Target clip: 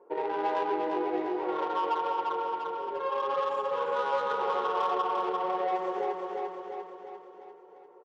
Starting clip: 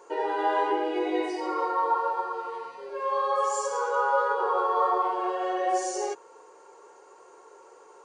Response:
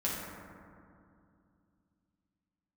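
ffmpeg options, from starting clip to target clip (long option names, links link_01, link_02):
-filter_complex "[0:a]lowpass=4100,aemphasis=mode=production:type=50fm,adynamicsmooth=sensitivity=1:basefreq=590,highpass=180,aecho=1:1:347|694|1041|1388|1735|2082|2429:0.501|0.276|0.152|0.0834|0.0459|0.0252|0.0139,asplit=2[link_01][link_02];[1:a]atrim=start_sample=2205[link_03];[link_02][link_03]afir=irnorm=-1:irlink=0,volume=-19.5dB[link_04];[link_01][link_04]amix=inputs=2:normalize=0,acompressor=threshold=-29dB:ratio=2"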